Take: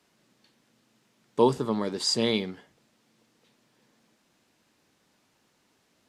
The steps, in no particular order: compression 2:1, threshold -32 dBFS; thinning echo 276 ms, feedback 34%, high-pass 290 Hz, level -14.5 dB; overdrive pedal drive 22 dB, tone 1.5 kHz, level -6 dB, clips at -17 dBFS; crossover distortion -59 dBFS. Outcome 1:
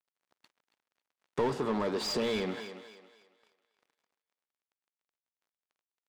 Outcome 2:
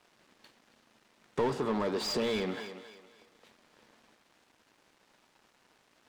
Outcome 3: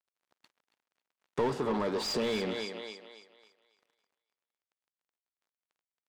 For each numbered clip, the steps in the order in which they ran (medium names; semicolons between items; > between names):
crossover distortion > overdrive pedal > thinning echo > compression; overdrive pedal > crossover distortion > thinning echo > compression; crossover distortion > thinning echo > overdrive pedal > compression